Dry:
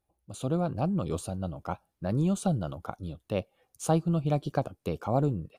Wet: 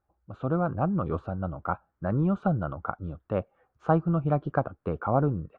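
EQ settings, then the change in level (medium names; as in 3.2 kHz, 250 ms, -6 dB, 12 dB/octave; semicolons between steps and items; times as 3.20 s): resonant low-pass 1.4 kHz, resonance Q 3; distance through air 86 m; peaking EQ 66 Hz +4 dB; +1.0 dB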